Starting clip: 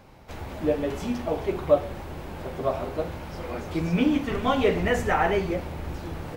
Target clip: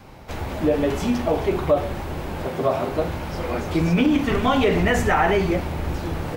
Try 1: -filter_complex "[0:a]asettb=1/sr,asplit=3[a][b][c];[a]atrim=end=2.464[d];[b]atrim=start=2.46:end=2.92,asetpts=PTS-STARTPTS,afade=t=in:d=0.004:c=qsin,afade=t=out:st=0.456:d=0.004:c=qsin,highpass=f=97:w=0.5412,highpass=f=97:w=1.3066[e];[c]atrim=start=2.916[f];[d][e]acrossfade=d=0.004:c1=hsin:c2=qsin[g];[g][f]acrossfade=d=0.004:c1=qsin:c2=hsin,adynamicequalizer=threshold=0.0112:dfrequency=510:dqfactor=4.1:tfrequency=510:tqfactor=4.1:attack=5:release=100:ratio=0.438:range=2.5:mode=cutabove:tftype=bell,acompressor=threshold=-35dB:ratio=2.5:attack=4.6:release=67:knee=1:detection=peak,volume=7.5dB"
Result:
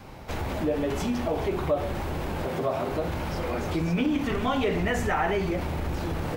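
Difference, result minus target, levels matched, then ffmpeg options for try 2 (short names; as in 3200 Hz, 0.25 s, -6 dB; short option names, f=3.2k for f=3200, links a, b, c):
compressor: peak gain reduction +7 dB
-filter_complex "[0:a]asettb=1/sr,asplit=3[a][b][c];[a]atrim=end=2.464[d];[b]atrim=start=2.46:end=2.92,asetpts=PTS-STARTPTS,afade=t=in:d=0.004:c=qsin,afade=t=out:st=0.456:d=0.004:c=qsin,highpass=f=97:w=0.5412,highpass=f=97:w=1.3066[e];[c]atrim=start=2.916[f];[d][e]acrossfade=d=0.004:c1=hsin:c2=qsin[g];[g][f]acrossfade=d=0.004:c1=qsin:c2=hsin,adynamicequalizer=threshold=0.0112:dfrequency=510:dqfactor=4.1:tfrequency=510:tqfactor=4.1:attack=5:release=100:ratio=0.438:range=2.5:mode=cutabove:tftype=bell,acompressor=threshold=-23.5dB:ratio=2.5:attack=4.6:release=67:knee=1:detection=peak,volume=7.5dB"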